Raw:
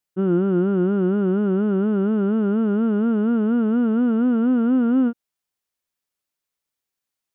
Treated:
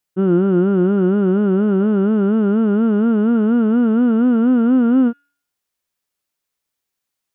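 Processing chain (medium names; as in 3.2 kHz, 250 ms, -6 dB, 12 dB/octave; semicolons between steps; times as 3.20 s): de-hum 284.7 Hz, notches 36; trim +4.5 dB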